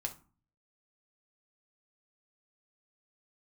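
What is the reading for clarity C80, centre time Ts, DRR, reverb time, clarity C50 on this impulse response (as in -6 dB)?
20.5 dB, 8 ms, 3.0 dB, 0.35 s, 13.5 dB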